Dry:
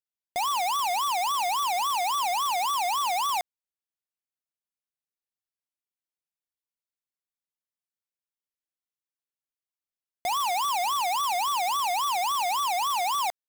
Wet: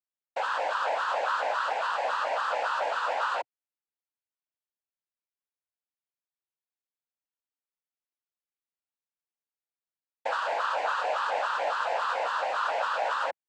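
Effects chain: elliptic band-pass 150–5500 Hz; noise vocoder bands 8; tone controls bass -9 dB, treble -14 dB; gain -1.5 dB

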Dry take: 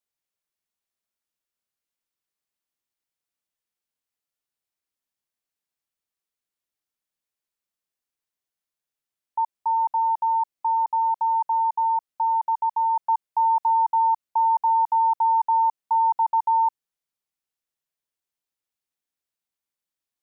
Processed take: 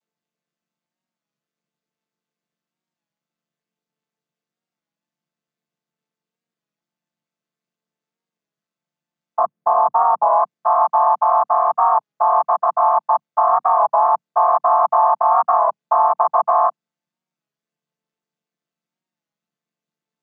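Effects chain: chord vocoder minor triad, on D3; 9.39–10.28 tilt -3.5 dB/oct; maximiser +12.5 dB; record warp 33 1/3 rpm, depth 100 cents; gain -5 dB

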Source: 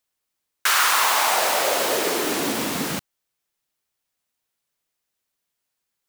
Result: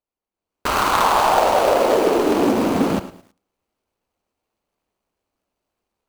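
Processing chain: median filter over 25 samples; bell 140 Hz -10.5 dB 0.38 oct; AGC gain up to 14 dB; on a send at -15.5 dB: reverb RT60 0.50 s, pre-delay 57 ms; on the sum: lo-fi delay 0.108 s, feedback 35%, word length 7-bit, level -15 dB; gain -2 dB

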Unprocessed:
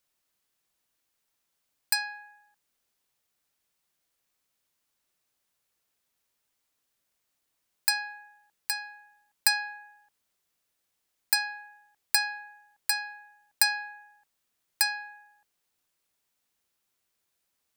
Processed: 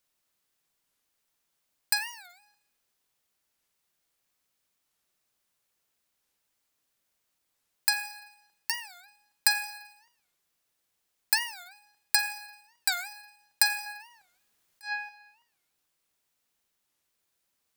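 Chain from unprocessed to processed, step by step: 13.86–15.09 negative-ratio compressor -34 dBFS, ratio -0.5; Schroeder reverb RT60 0.83 s, DRR 9.5 dB; record warp 45 rpm, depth 250 cents

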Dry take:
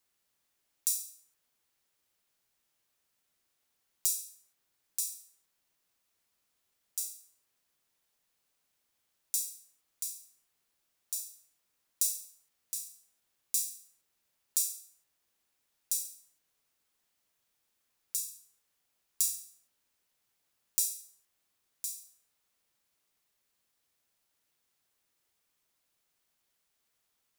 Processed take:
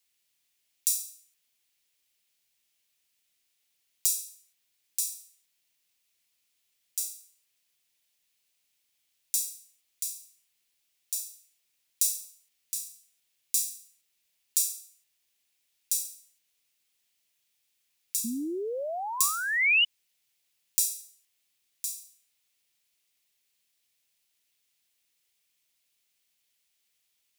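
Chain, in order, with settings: painted sound rise, 18.24–19.85, 220–3000 Hz -27 dBFS; resonant high shelf 1800 Hz +8.5 dB, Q 1.5; gain -5 dB

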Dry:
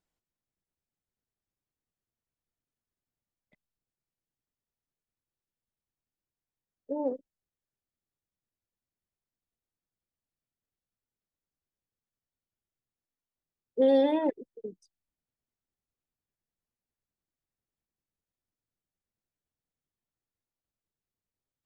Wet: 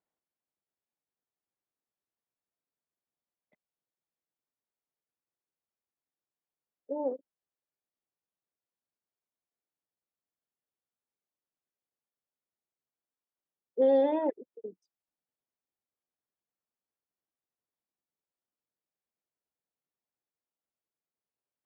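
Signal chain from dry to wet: band-pass 700 Hz, Q 0.64

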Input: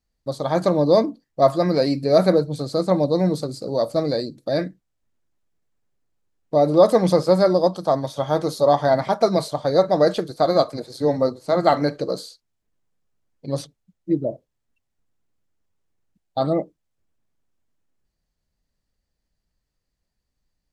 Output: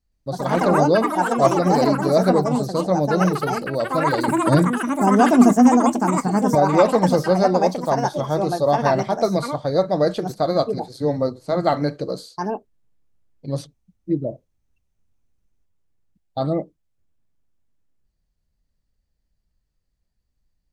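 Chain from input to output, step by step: low shelf 170 Hz +9 dB; echoes that change speed 0.119 s, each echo +5 st, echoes 3; 4.28–6.55 ten-band EQ 125 Hz +11 dB, 250 Hz +10 dB, 8000 Hz +7 dB; gain -3 dB

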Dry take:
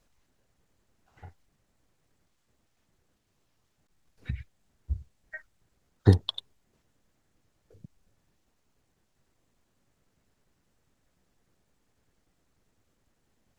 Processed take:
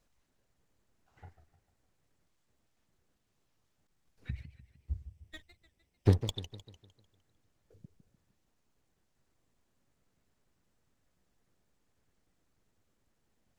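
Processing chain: 4.36–6.32 minimum comb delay 0.37 ms; warbling echo 0.151 s, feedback 47%, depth 218 cents, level -13 dB; gain -5 dB

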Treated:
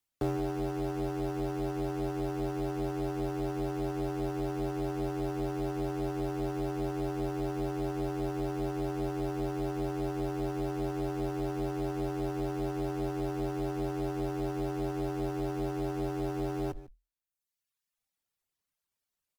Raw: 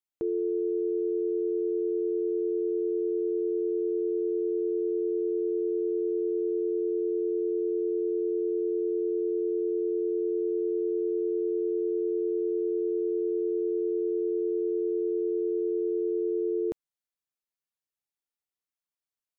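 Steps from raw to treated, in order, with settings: octaver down 1 oct, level +2 dB; in parallel at -7.5 dB: requantised 6-bit, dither none; on the sum: outdoor echo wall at 25 m, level -18 dB; limiter -26 dBFS, peak gain reduction 9.5 dB; one-sided clip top -50 dBFS, bottom -27 dBFS; reverb removal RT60 1.1 s; frequency shift -42 Hz; gain +7.5 dB

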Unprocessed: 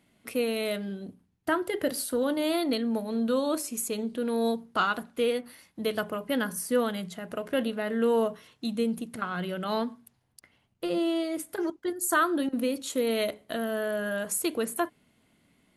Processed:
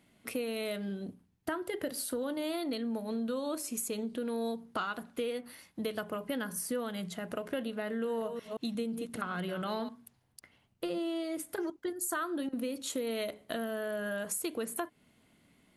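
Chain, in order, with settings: 7.87–9.89 reverse delay 0.175 s, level -10 dB; compressor 4:1, threshold -33 dBFS, peak gain reduction 11.5 dB

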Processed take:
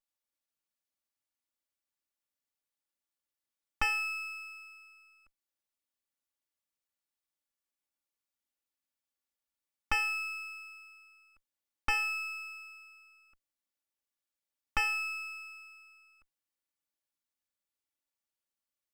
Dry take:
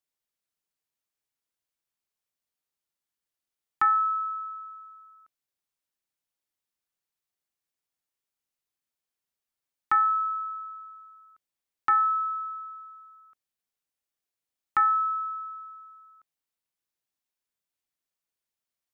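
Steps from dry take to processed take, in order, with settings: minimum comb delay 3.5 ms; gain -2.5 dB

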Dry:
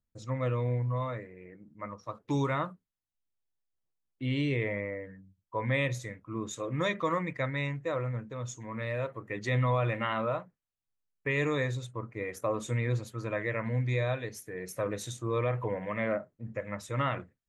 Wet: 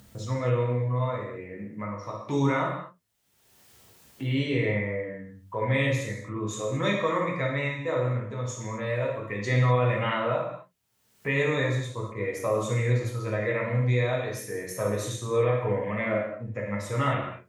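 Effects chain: HPF 59 Hz; upward compressor, threshold -34 dBFS; non-linear reverb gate 0.28 s falling, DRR -2.5 dB

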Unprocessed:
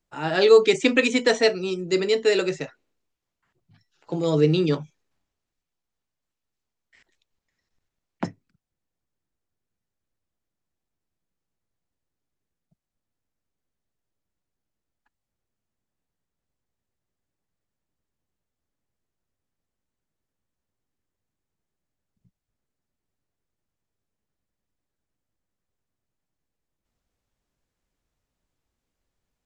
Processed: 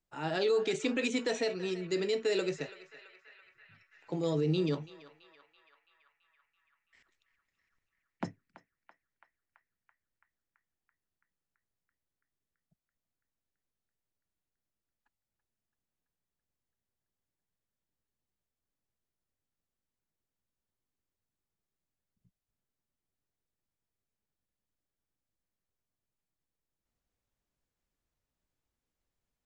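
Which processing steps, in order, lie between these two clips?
dynamic EQ 1600 Hz, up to -3 dB, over -32 dBFS, Q 0.99; limiter -14 dBFS, peak gain reduction 8.5 dB; on a send: narrowing echo 0.333 s, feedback 78%, band-pass 1700 Hz, level -13 dB; on the sum: gain -7.5 dB

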